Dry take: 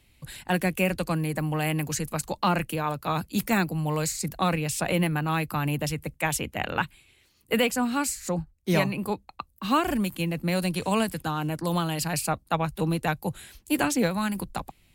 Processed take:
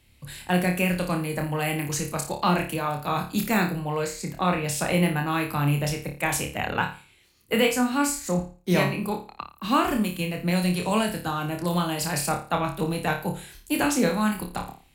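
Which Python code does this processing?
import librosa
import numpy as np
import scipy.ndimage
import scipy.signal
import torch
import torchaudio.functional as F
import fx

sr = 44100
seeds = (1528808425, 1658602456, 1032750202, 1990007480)

y = fx.bass_treble(x, sr, bass_db=-3, treble_db=-9, at=(3.79, 4.64))
y = fx.room_flutter(y, sr, wall_m=4.8, rt60_s=0.36)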